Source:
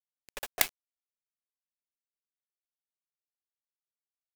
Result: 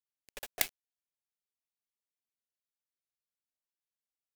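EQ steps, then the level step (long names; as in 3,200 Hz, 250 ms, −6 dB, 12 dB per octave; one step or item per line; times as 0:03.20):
parametric band 1,100 Hz −6 dB
−4.0 dB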